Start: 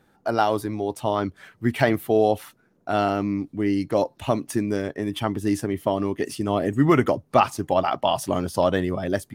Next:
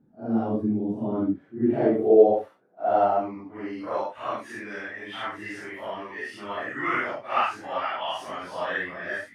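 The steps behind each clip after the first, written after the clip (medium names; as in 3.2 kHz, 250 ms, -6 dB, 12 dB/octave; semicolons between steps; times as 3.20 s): phase randomisation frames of 200 ms; bass shelf 200 Hz +5 dB; band-pass sweep 220 Hz -> 1.8 kHz, 0.97–4.60 s; trim +5.5 dB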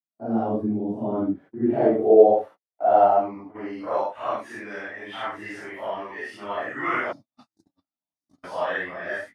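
time-frequency box 7.12–8.44 s, 340–3500 Hz -29 dB; gate -42 dBFS, range -49 dB; peaking EQ 710 Hz +6 dB 1.3 oct; trim -1 dB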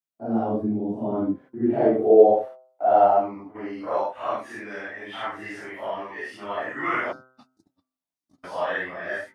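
de-hum 129.1 Hz, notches 12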